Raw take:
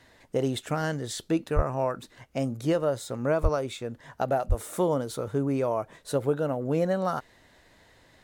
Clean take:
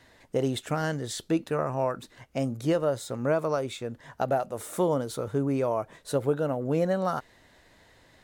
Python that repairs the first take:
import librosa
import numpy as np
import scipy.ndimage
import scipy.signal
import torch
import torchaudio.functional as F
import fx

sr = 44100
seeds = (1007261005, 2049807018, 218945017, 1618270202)

y = fx.highpass(x, sr, hz=140.0, slope=24, at=(1.55, 1.67), fade=0.02)
y = fx.highpass(y, sr, hz=140.0, slope=24, at=(3.42, 3.54), fade=0.02)
y = fx.highpass(y, sr, hz=140.0, slope=24, at=(4.48, 4.6), fade=0.02)